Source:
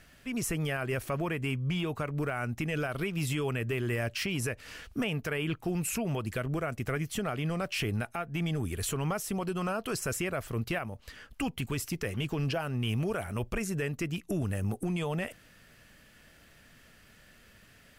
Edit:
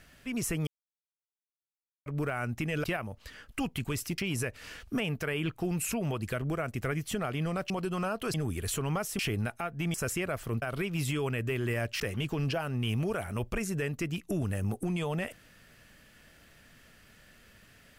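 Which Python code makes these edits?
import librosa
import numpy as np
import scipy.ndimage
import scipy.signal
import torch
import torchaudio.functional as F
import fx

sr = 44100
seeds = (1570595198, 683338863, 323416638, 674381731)

y = fx.edit(x, sr, fx.silence(start_s=0.67, length_s=1.39),
    fx.swap(start_s=2.84, length_s=1.38, other_s=10.66, other_length_s=1.34),
    fx.swap(start_s=7.74, length_s=0.75, other_s=9.34, other_length_s=0.64), tone=tone)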